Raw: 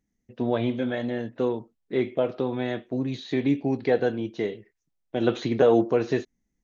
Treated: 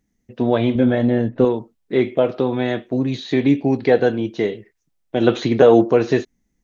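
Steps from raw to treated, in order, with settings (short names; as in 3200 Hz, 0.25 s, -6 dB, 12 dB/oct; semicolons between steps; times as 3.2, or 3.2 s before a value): 0.75–1.45 tilt -2.5 dB/oct; gain +7.5 dB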